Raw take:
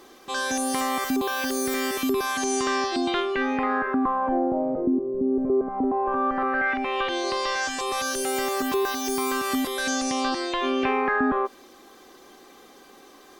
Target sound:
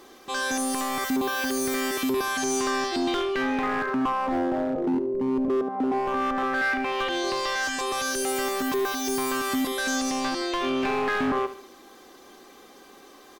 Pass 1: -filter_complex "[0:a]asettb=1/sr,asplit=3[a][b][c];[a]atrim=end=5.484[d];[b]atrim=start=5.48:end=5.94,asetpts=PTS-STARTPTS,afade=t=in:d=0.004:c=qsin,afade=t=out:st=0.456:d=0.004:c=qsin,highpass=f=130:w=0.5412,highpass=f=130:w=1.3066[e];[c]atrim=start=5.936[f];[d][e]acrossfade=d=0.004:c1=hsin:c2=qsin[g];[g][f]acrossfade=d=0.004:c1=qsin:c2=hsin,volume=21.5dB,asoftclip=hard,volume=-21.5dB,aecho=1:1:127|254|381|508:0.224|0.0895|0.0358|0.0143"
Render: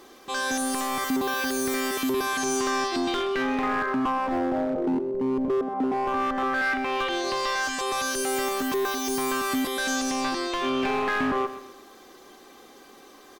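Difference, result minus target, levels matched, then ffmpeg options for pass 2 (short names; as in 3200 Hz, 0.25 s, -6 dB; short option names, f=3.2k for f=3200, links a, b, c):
echo 55 ms late
-filter_complex "[0:a]asettb=1/sr,asplit=3[a][b][c];[a]atrim=end=5.484[d];[b]atrim=start=5.48:end=5.94,asetpts=PTS-STARTPTS,afade=t=in:d=0.004:c=qsin,afade=t=out:st=0.456:d=0.004:c=qsin,highpass=f=130:w=0.5412,highpass=f=130:w=1.3066[e];[c]atrim=start=5.936[f];[d][e]acrossfade=d=0.004:c1=hsin:c2=qsin[g];[g][f]acrossfade=d=0.004:c1=qsin:c2=hsin,volume=21.5dB,asoftclip=hard,volume=-21.5dB,aecho=1:1:72|144|216|288:0.224|0.0895|0.0358|0.0143"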